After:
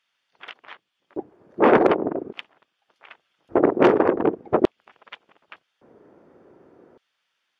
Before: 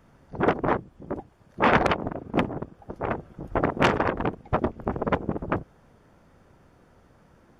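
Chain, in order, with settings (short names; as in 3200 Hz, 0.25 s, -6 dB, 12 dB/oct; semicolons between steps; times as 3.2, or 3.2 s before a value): RIAA curve playback; LFO high-pass square 0.43 Hz 370–3200 Hz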